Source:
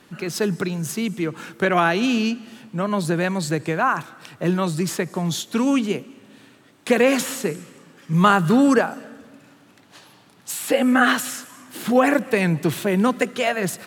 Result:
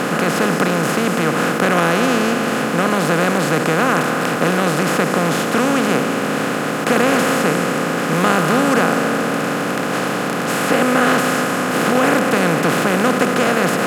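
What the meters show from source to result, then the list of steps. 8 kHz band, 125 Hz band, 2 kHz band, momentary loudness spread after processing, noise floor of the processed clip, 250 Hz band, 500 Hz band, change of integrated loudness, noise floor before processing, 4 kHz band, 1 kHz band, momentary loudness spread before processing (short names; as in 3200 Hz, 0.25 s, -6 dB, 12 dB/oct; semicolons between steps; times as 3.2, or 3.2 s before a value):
+6.0 dB, +3.5 dB, +7.0 dB, 5 LU, -21 dBFS, +3.5 dB, +6.0 dB, +4.5 dB, -53 dBFS, +6.5 dB, +6.5 dB, 13 LU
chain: per-bin compression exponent 0.2; gain -6 dB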